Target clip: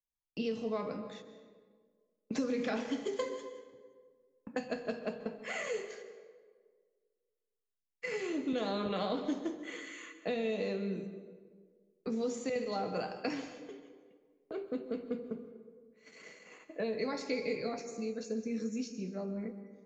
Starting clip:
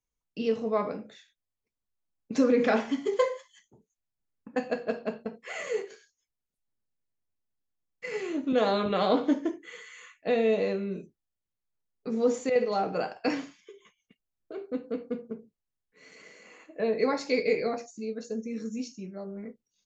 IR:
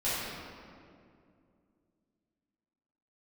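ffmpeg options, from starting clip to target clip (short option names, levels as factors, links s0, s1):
-filter_complex "[0:a]agate=range=0.251:threshold=0.00251:ratio=16:detection=peak,acrossover=split=180|3000[s0][s1][s2];[s0]acompressor=threshold=0.00631:ratio=4[s3];[s1]acompressor=threshold=0.0178:ratio=4[s4];[s2]acompressor=threshold=0.00447:ratio=4[s5];[s3][s4][s5]amix=inputs=3:normalize=0,asplit=2[s6][s7];[1:a]atrim=start_sample=2205,asetrate=74970,aresample=44100,adelay=123[s8];[s7][s8]afir=irnorm=-1:irlink=0,volume=0.158[s9];[s6][s9]amix=inputs=2:normalize=0"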